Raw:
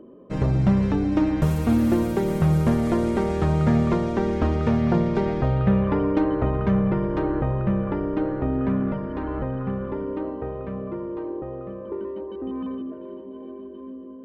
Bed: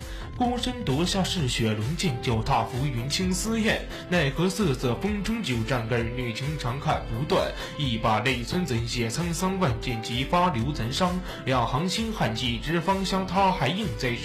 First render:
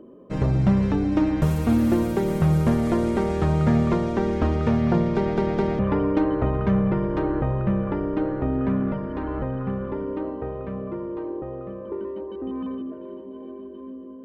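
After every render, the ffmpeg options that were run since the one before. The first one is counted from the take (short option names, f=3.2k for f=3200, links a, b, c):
-filter_complex "[0:a]asplit=4[a][b][c][d];[a]atrim=end=5.372[e];[b]atrim=start=5.158:end=5.372[f];[c]atrim=start=5.158:end=5.372[g];[d]atrim=start=5.788[h];[e][f]acrossfade=d=0.004:c1=hsin:c2=hsin[i];[i][g]acrossfade=d=0.004:c1=hsin:c2=hsin[j];[j][h]acrossfade=d=0.004:c1=hsin:c2=hsin"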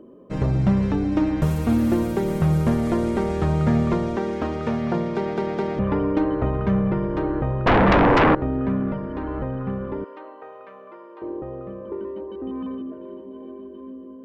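-filter_complex "[0:a]asettb=1/sr,asplit=3[a][b][c];[a]atrim=end=4.164[d];[b]atrim=start=4.16:end=5.77,asetpts=PTS-STARTPTS,afade=t=in:d=0.004:c=qsin,afade=t=out:st=1.606:d=0.004:c=qsin,highpass=f=250:p=1[e];[c]atrim=start=5.766[f];[d][e]acrossfade=d=0.004:c1=hsin:c2=qsin[g];[g][f]acrossfade=d=0.004:c1=qsin:c2=hsin,asettb=1/sr,asplit=3[h][i][j];[h]atrim=end=7.664[k];[i]atrim=start=7.66:end=8.35,asetpts=PTS-STARTPTS,afade=t=in:d=0.004:c=qsin,afade=t=out:st=0.686:d=0.004:c=qsin,aeval=exprs='0.251*sin(PI/2*5.62*val(0)/0.251)':c=same[l];[j]atrim=start=8.346[m];[k][l]acrossfade=d=0.004:c1=hsin:c2=qsin[n];[n][m]acrossfade=d=0.004:c1=qsin:c2=hsin,asettb=1/sr,asplit=3[o][p][q];[o]atrim=end=10.044[r];[p]atrim=start=10.04:end=11.22,asetpts=PTS-STARTPTS,afade=t=in:d=0.004:c=qsin,afade=t=out:st=1.176:d=0.004:c=qsin,highpass=820[s];[q]atrim=start=11.216[t];[r][s]acrossfade=d=0.004:c1=hsin:c2=qsin[u];[u][t]acrossfade=d=0.004:c1=qsin:c2=hsin"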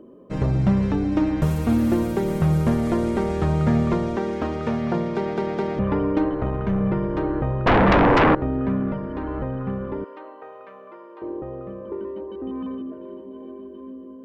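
-filter_complex "[0:a]asettb=1/sr,asplit=3[a][b][c];[a]atrim=end=6.294[d];[b]atrim=start=6.29:end=6.81,asetpts=PTS-STARTPTS,afade=t=in:d=0.004:c=qsin,afade=t=out:st=0.516:d=0.004:c=qsin,aeval=exprs='(tanh(5.62*val(0)+0.4)-tanh(0.4))/5.62':c=same[e];[c]atrim=start=6.806[f];[d][e]acrossfade=d=0.004:c1=hsin:c2=qsin[g];[g][f]acrossfade=d=0.004:c1=qsin:c2=hsin"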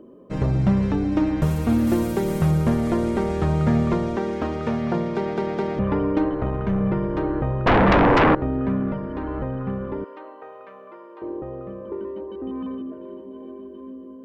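-filter_complex "[0:a]asettb=1/sr,asplit=3[a][b][c];[a]atrim=end=1.874[d];[b]atrim=start=1.87:end=2.51,asetpts=PTS-STARTPTS,afade=t=in:d=0.004:c=qsin,afade=t=out:st=0.636:d=0.004:c=qsin,highshelf=f=4.4k:g=6[e];[c]atrim=start=2.506[f];[d][e]acrossfade=d=0.004:c1=hsin:c2=qsin[g];[g][f]acrossfade=d=0.004:c1=qsin:c2=hsin"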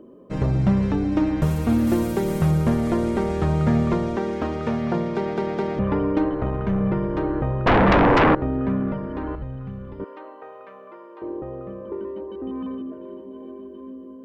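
-filter_complex "[0:a]asettb=1/sr,asplit=3[a][b][c];[a]atrim=end=9.354[d];[b]atrim=start=9.35:end=10,asetpts=PTS-STARTPTS,afade=t=in:d=0.004:c=qsin,afade=t=out:st=0.646:d=0.004:c=qsin,acrossover=split=150|3000[e][f][g];[f]acompressor=threshold=-39dB:ratio=6:attack=3.2:release=140:knee=2.83:detection=peak[h];[e][h][g]amix=inputs=3:normalize=0[i];[c]atrim=start=9.996[j];[d][i]acrossfade=d=0.004:c1=hsin:c2=qsin[k];[k][j]acrossfade=d=0.004:c1=qsin:c2=hsin"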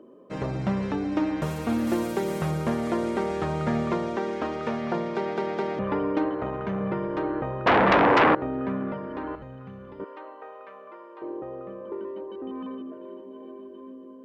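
-af "highpass=f=420:p=1,highshelf=f=10k:g=-8"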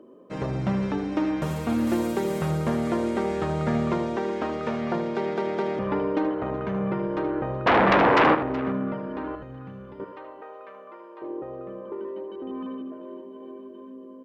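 -af "aecho=1:1:77|374:0.299|0.119"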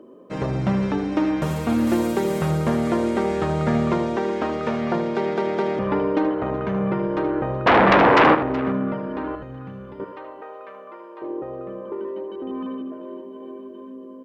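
-af "volume=4dB"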